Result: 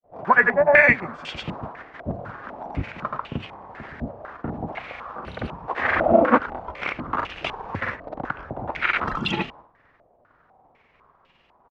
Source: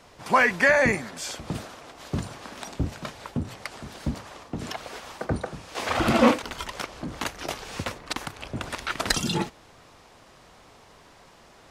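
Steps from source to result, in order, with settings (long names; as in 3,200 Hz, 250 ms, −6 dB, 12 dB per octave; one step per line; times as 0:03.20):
granular cloud 100 ms, grains 20 per second, pitch spread up and down by 0 semitones
downward expander −45 dBFS
low-pass on a step sequencer 4 Hz 640–2,800 Hz
level +1.5 dB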